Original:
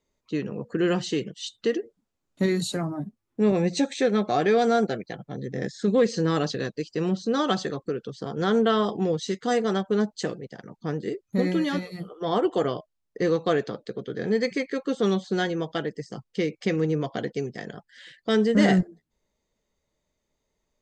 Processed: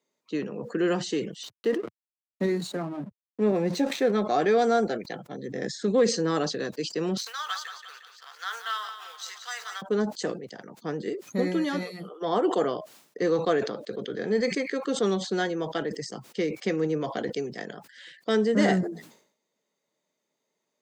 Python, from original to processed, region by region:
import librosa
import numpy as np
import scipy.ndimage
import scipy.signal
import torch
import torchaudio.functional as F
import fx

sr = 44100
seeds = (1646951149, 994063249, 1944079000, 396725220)

y = fx.chain(x, sr, fx.high_shelf(hz=3800.0, db=-8.5),
    fx.backlash(play_db=-39.5), at=(1.43, 4.13))
y = fx.chain(y, sr, fx.law_mismatch(coded='A'),
    fx.highpass(hz=1200.0, slope=24),
    fx.echo_feedback(ms=178, feedback_pct=47, wet_db=-10), at=(7.17, 9.82))
y = scipy.signal.sosfilt(scipy.signal.bessel(8, 240.0, 'highpass', norm='mag', fs=sr, output='sos'), y)
y = fx.dynamic_eq(y, sr, hz=2900.0, q=1.2, threshold_db=-42.0, ratio=4.0, max_db=-4)
y = fx.sustainer(y, sr, db_per_s=100.0)